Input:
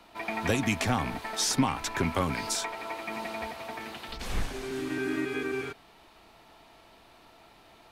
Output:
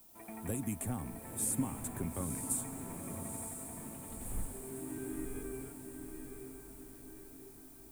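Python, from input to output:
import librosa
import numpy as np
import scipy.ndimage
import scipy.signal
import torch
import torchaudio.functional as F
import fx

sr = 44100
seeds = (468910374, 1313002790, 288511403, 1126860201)

p1 = fx.curve_eq(x, sr, hz=(220.0, 5600.0, 8400.0), db=(0, -21, 11))
p2 = fx.dmg_noise_colour(p1, sr, seeds[0], colour='violet', level_db=-52.0)
p3 = p2 + fx.echo_diffused(p2, sr, ms=939, feedback_pct=53, wet_db=-6.0, dry=0)
y = F.gain(torch.from_numpy(p3), -8.0).numpy()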